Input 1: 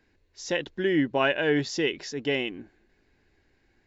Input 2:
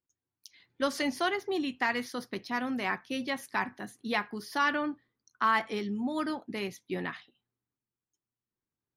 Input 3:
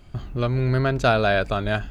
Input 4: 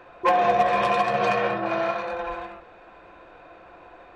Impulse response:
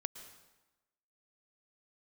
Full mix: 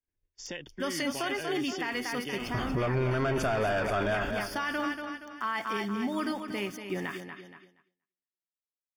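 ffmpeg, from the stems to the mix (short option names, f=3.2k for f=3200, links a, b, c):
-filter_complex "[0:a]lowshelf=f=97:g=9,acrossover=split=160|1700[a][b][c];[a]acompressor=threshold=-48dB:ratio=4[d];[b]acompressor=threshold=-38dB:ratio=4[e];[c]acompressor=threshold=-37dB:ratio=4[f];[d][e][f]amix=inputs=3:normalize=0,volume=-3.5dB[g];[1:a]adynamicequalizer=threshold=0.0126:dfrequency=1900:dqfactor=0.7:tfrequency=1900:tqfactor=0.7:attack=5:release=100:ratio=0.375:range=2:mode=boostabove:tftype=highshelf,volume=0.5dB,asplit=2[h][i];[i]volume=-9dB[j];[2:a]asplit=2[k][l];[l]highpass=f=720:p=1,volume=24dB,asoftclip=type=tanh:threshold=-7dB[m];[k][m]amix=inputs=2:normalize=0,lowpass=f=1.5k:p=1,volume=-6dB,adelay=2400,volume=1dB,asplit=2[n][o];[o]volume=-17.5dB[p];[h][n]amix=inputs=2:normalize=0,aeval=exprs='val(0)*gte(abs(val(0)),0.00501)':c=same,alimiter=limit=-16.5dB:level=0:latency=1:release=246,volume=0dB[q];[j][p]amix=inputs=2:normalize=0,aecho=0:1:236|472|708|944|1180|1416:1|0.42|0.176|0.0741|0.0311|0.0131[r];[g][q][r]amix=inputs=3:normalize=0,asuperstop=centerf=4000:order=12:qfactor=6.6,agate=range=-33dB:threshold=-50dB:ratio=3:detection=peak,alimiter=limit=-22dB:level=0:latency=1:release=36"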